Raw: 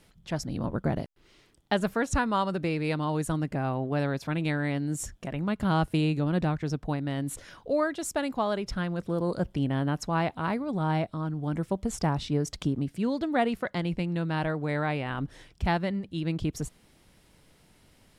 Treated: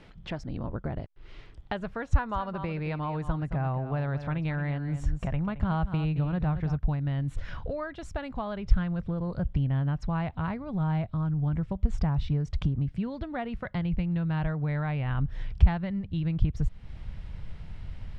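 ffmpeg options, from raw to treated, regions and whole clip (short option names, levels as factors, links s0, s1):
-filter_complex "[0:a]asettb=1/sr,asplit=3[s0][s1][s2];[s0]atrim=end=2.074[s3];[s1]atrim=start=2.07:end=6.79,asetpts=PTS-STARTPTS,afade=t=in:d=0.004:c=qsin,afade=t=out:st=4.716:d=0.004:c=qsin,equalizer=f=890:w=0.78:g=5,aecho=1:1:219:0.237,atrim=end_sample=208152[s4];[s2]atrim=start=6.786[s5];[s3][s4]acrossfade=d=0.004:c1=hsin:c2=qsin[s6];[s6][s5]acrossfade=d=0.004:c1=qsin:c2=hsin,acompressor=threshold=0.00562:ratio=2.5,asubboost=boost=11.5:cutoff=92,lowpass=3000,volume=2.66"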